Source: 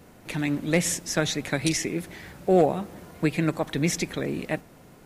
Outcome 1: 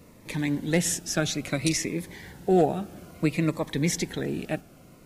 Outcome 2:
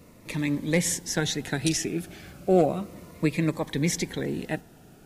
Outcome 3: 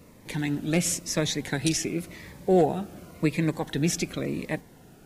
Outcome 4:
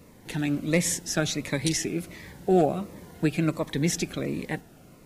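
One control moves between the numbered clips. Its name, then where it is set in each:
phaser whose notches keep moving one way, speed: 0.59, 0.33, 0.93, 1.4 Hertz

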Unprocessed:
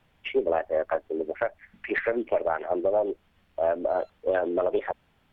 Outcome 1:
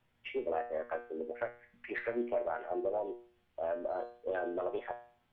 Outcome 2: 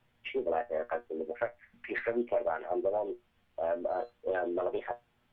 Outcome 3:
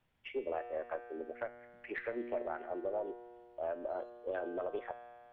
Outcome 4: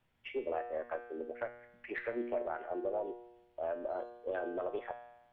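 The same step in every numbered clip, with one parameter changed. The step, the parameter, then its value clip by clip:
tuned comb filter, decay: 0.46, 0.16, 2.2, 1 seconds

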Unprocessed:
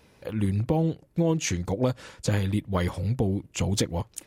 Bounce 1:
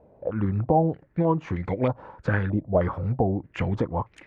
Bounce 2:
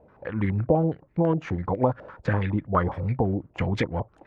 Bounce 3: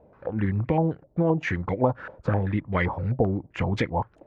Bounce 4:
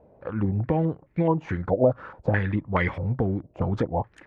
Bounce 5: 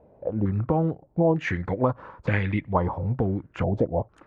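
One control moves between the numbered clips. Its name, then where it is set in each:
low-pass on a step sequencer, speed: 3.2, 12, 7.7, 4.7, 2.2 Hertz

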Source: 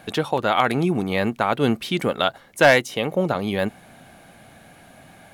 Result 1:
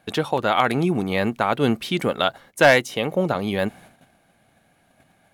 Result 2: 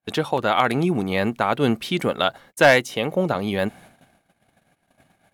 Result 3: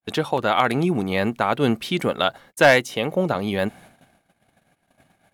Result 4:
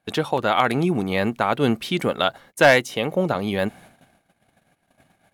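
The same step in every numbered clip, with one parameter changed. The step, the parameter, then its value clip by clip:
noise gate, range: −13, −43, −57, −26 decibels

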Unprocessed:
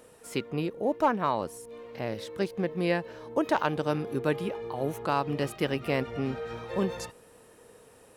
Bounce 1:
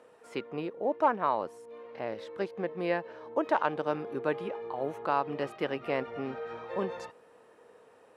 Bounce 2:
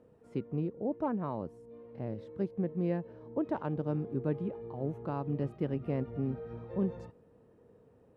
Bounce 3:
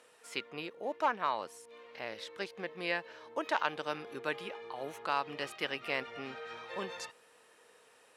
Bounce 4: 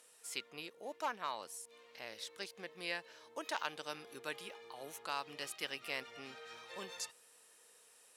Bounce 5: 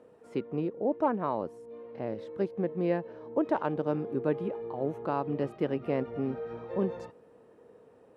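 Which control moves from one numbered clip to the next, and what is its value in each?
resonant band-pass, frequency: 890, 130, 2,600, 6,700, 340 Hertz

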